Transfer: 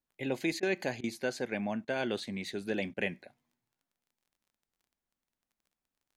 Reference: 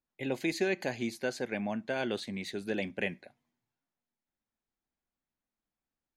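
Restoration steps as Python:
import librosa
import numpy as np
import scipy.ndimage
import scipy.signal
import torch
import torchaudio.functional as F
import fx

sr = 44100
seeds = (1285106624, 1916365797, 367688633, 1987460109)

y = fx.fix_declick_ar(x, sr, threshold=6.5)
y = fx.fix_interpolate(y, sr, at_s=(0.6, 1.01, 1.85, 2.94), length_ms=26.0)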